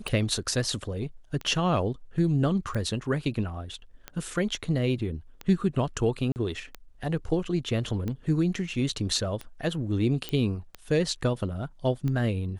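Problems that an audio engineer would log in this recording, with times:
tick 45 rpm
6.32–6.36 gap 39 ms
10.29 pop -16 dBFS

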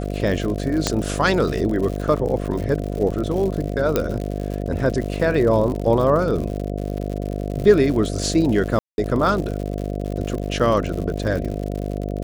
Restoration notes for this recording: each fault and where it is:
buzz 50 Hz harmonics 14 -26 dBFS
crackle 110/s -27 dBFS
0.87 pop -4 dBFS
3.96 pop -5 dBFS
8.79–8.98 gap 0.191 s

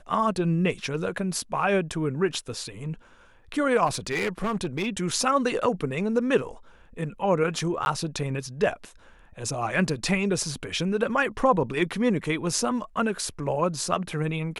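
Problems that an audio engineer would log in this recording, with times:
3.86–4.87 clipped -22.5 dBFS
7.85–7.86 gap 11 ms

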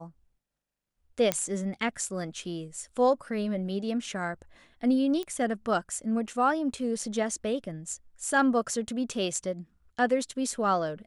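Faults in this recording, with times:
1.32 pop -9 dBFS
5.23 pop -22 dBFS

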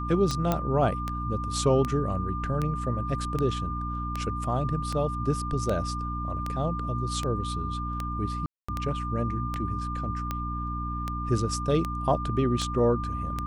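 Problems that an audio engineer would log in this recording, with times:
hum 60 Hz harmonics 5 -33 dBFS
tick 78 rpm -16 dBFS
tone 1200 Hz -33 dBFS
0.52 pop -11 dBFS
4.44 gap 2.3 ms
8.46–8.69 gap 0.225 s

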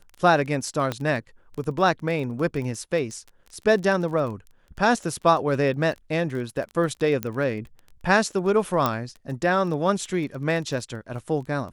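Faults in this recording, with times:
crackle 19/s -32 dBFS
0.92 pop -13 dBFS
7.23 pop -11 dBFS
8.86 pop -8 dBFS

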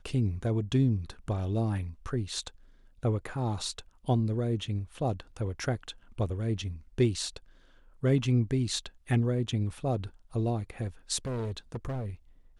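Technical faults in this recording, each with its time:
11.25–12.09 clipped -30.5 dBFS

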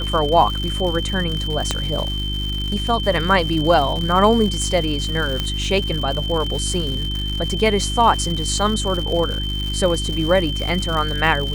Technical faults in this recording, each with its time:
crackle 210/s -25 dBFS
hum 50 Hz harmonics 7 -25 dBFS
tone 3100 Hz -26 dBFS
1.71 pop -5 dBFS
5.4 pop -8 dBFS

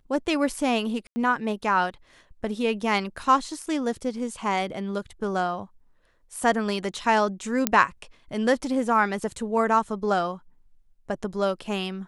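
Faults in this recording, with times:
1.07–1.16 gap 90 ms
7.67 pop -3 dBFS

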